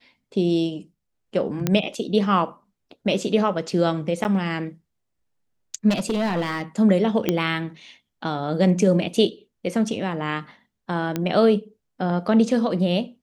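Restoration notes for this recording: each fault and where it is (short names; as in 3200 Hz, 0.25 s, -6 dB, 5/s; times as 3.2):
1.67 pop -7 dBFS
4.24–4.25 gap 9.2 ms
5.89–6.62 clipped -18.5 dBFS
7.29 pop -7 dBFS
11.16 pop -11 dBFS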